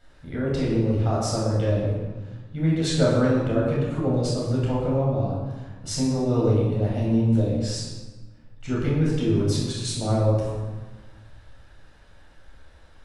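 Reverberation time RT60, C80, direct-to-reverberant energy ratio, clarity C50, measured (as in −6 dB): 1.3 s, 2.5 dB, −6.0 dB, 0.0 dB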